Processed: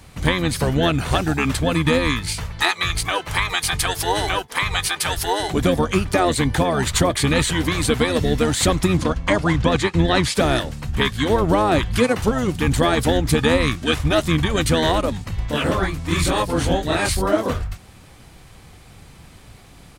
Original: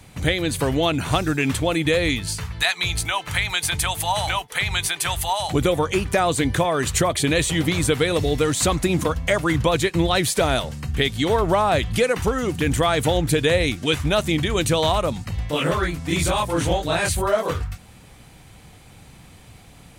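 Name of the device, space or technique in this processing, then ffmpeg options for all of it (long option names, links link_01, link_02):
octave pedal: -filter_complex "[0:a]asplit=2[link_01][link_02];[link_02]asetrate=22050,aresample=44100,atempo=2,volume=-3dB[link_03];[link_01][link_03]amix=inputs=2:normalize=0,asettb=1/sr,asplit=3[link_04][link_05][link_06];[link_04]atrim=end=8.974[link_07];[link_05]atrim=start=8.97:end=10.35,asetpts=PTS-STARTPTS,afade=type=in:duration=0.004:curve=qsin,afade=type=out:start_time=1.376:duration=0.004:curve=qsin,lowpass=7600[link_08];[link_06]atrim=start=10.346[link_09];[link_07][link_08]acrossfade=duration=0.004:curve1=hsin:curve2=qsin[link_10];[link_10][link_09]acrossfade=duration=0.004:curve1=qsin:curve2=hsin"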